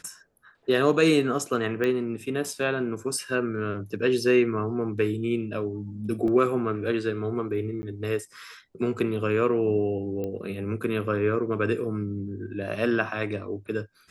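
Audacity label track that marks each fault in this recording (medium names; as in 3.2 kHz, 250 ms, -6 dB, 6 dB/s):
1.840000	1.840000	pop -16 dBFS
6.280000	6.280000	dropout 2 ms
7.820000	7.830000	dropout 10 ms
10.240000	10.240000	pop -21 dBFS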